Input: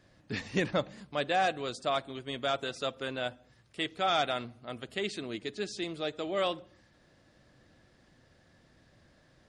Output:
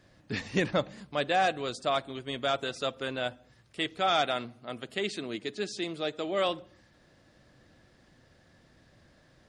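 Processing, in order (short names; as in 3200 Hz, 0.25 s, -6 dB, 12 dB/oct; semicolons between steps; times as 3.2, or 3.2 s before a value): 4.09–6.49 HPF 120 Hz; gain +2 dB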